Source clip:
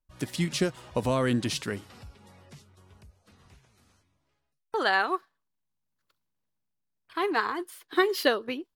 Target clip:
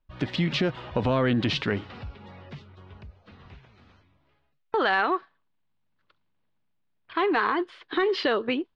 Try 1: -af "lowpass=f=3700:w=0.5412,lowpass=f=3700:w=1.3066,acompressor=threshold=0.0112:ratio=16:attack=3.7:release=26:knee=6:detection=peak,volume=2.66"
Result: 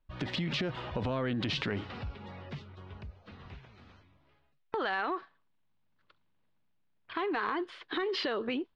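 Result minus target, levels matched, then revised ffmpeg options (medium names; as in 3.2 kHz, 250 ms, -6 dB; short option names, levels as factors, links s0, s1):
compression: peak gain reduction +9.5 dB
-af "lowpass=f=3700:w=0.5412,lowpass=f=3700:w=1.3066,acompressor=threshold=0.0355:ratio=16:attack=3.7:release=26:knee=6:detection=peak,volume=2.66"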